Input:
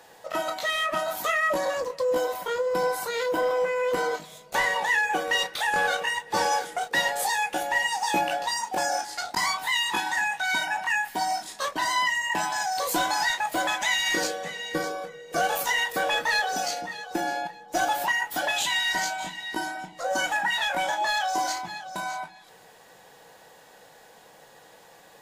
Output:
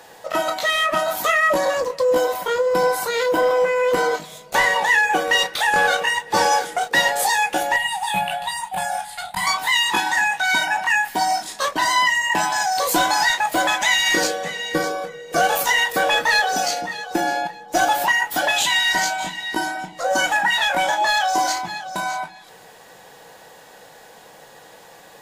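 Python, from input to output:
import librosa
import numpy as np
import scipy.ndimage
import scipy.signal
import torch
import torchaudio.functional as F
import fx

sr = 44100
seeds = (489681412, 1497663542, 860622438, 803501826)

y = fx.curve_eq(x, sr, hz=(190.0, 280.0, 500.0, 740.0, 1300.0, 3600.0, 5600.0, 9400.0, 15000.0), db=(0, -27, -16, -3, -7, 0, -19, 2, -4), at=(7.76, 9.47))
y = F.gain(torch.from_numpy(y), 7.0).numpy()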